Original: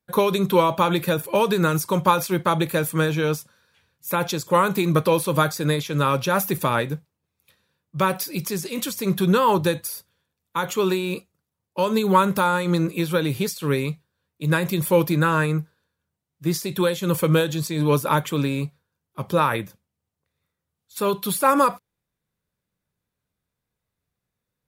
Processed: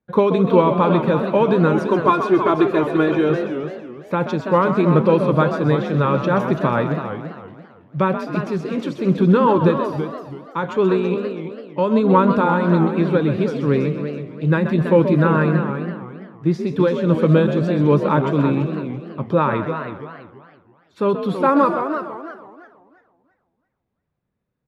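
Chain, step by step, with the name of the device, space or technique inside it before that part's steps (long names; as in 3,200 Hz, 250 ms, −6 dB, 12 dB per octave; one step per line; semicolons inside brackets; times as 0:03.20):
0:01.73–0:03.30: comb filter 2.9 ms, depth 76%
phone in a pocket (low-pass filter 3,500 Hz 12 dB per octave; parametric band 260 Hz +4.5 dB 2 octaves; high-shelf EQ 2,400 Hz −9.5 dB)
echo with shifted repeats 130 ms, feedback 41%, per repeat +51 Hz, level −9.5 dB
feedback echo with a swinging delay time 332 ms, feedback 31%, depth 183 cents, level −9 dB
level +1.5 dB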